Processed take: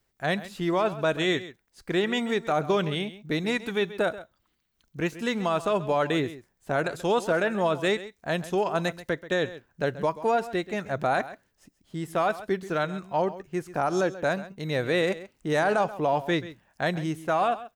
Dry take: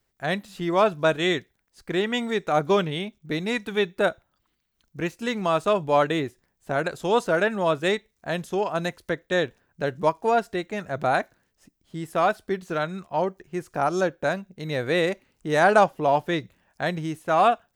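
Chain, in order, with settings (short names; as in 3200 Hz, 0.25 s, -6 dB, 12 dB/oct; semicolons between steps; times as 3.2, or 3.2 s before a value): limiter -15.5 dBFS, peak gain reduction 10 dB; echo 0.133 s -15.5 dB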